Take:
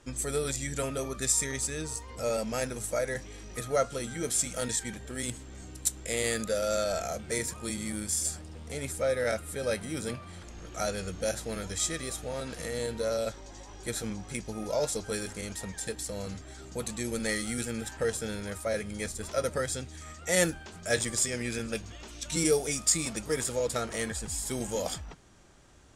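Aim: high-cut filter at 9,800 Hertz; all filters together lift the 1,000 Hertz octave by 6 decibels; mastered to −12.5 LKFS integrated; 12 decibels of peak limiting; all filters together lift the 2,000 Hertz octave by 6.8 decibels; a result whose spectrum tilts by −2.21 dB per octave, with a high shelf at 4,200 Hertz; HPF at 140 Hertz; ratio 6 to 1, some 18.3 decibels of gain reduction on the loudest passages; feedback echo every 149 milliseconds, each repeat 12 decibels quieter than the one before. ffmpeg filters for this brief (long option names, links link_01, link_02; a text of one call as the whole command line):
ffmpeg -i in.wav -af "highpass=140,lowpass=9800,equalizer=frequency=1000:width_type=o:gain=6.5,equalizer=frequency=2000:width_type=o:gain=4.5,highshelf=frequency=4200:gain=8.5,acompressor=threshold=-36dB:ratio=6,alimiter=level_in=7dB:limit=-24dB:level=0:latency=1,volume=-7dB,aecho=1:1:149|298|447:0.251|0.0628|0.0157,volume=29dB" out.wav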